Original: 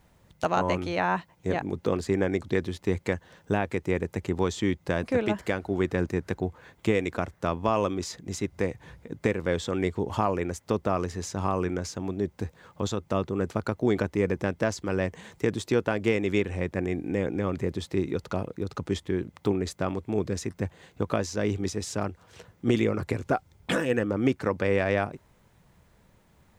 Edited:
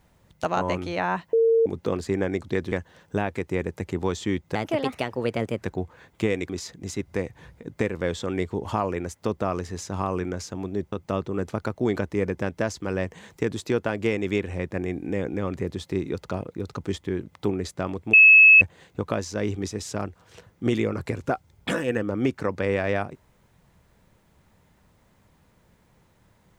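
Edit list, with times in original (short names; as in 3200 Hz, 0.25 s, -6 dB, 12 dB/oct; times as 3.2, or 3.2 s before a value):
1.33–1.66 bleep 455 Hz -15.5 dBFS
2.72–3.08 cut
4.91–6.26 speed 127%
7.14–7.94 cut
12.37–12.94 cut
20.15–20.63 bleep 2590 Hz -8.5 dBFS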